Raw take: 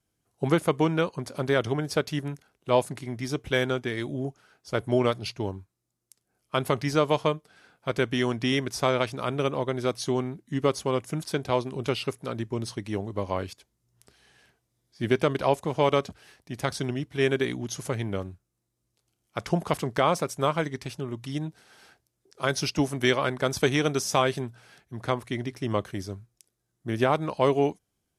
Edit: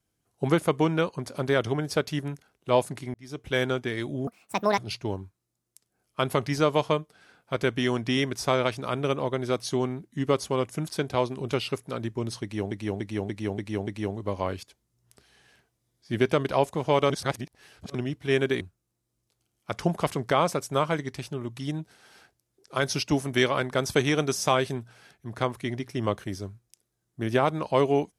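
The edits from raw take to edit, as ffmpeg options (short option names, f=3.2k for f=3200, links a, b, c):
-filter_complex "[0:a]asplit=12[a][b][c][d][e][f][g][h][i][j][k][l];[a]atrim=end=3.14,asetpts=PTS-STARTPTS,afade=t=out:st=3.136:d=0.004:c=hsin[m];[b]atrim=start=3.14:end=4.274,asetpts=PTS-STARTPTS,afade=t=in:d=0.48[n];[c]atrim=start=4.27:end=5.13,asetpts=PTS-STARTPTS,asetrate=74529,aresample=44100,atrim=end_sample=22441,asetpts=PTS-STARTPTS[o];[d]atrim=start=5.126:end=13.062[p];[e]atrim=start=12.768:end=13.062[q];[f]atrim=start=12.768:end=13.062[r];[g]atrim=start=12.768:end=13.062[s];[h]atrim=start=12.768:end=13.062[t];[i]atrim=start=12.768:end=16.002[u];[j]atrim=start=15.998:end=16.852,asetpts=PTS-STARTPTS,areverse[v];[k]atrim=start=16.848:end=17.512[w];[l]atrim=start=18.278[x];[m][n]concat=n=2:v=0:a=1[y];[y][o]acrossfade=d=0.004:c1=hsin:c2=hsin[z];[z][p]acrossfade=d=0.004:c1=hsin:c2=hsin[aa];[aa][q]acrossfade=d=0.004:c1=hsin:c2=hsin[ab];[ab][r]acrossfade=d=0.004:c1=hsin:c2=hsin[ac];[ac][s]acrossfade=d=0.004:c1=hsin:c2=hsin[ad];[ad][t]acrossfade=d=0.004:c1=hsin:c2=hsin[ae];[ae][u]acrossfade=d=0.004:c1=hsin:c2=hsin[af];[af][v]acrossfade=d=0.004:c1=hsin:c2=hsin[ag];[ag][w]acrossfade=d=0.004:c1=hsin:c2=hsin[ah];[ah][x]acrossfade=d=0.004:c1=hsin:c2=hsin"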